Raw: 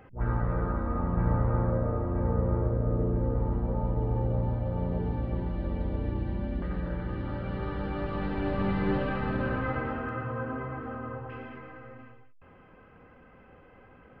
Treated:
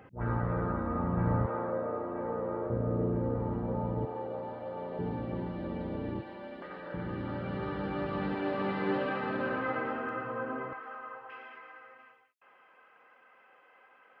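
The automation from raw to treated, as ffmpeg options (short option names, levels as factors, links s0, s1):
-af "asetnsamples=n=441:p=0,asendcmd='1.46 highpass f 350;2.7 highpass f 130;4.05 highpass f 430;4.99 highpass f 160;6.21 highpass f 500;6.94 highpass f 130;8.35 highpass f 270;10.73 highpass f 850',highpass=100"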